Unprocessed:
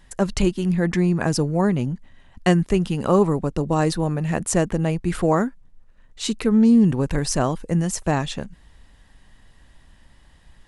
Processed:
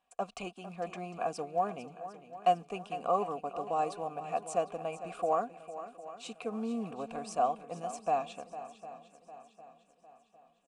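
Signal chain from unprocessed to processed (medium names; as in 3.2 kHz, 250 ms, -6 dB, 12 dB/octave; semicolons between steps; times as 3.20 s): companding laws mixed up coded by A; vowel filter a; peaking EQ 8.4 kHz +13 dB 0.84 oct; comb 4.2 ms, depth 38%; on a send: shuffle delay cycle 754 ms, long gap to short 1.5:1, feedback 42%, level -13.5 dB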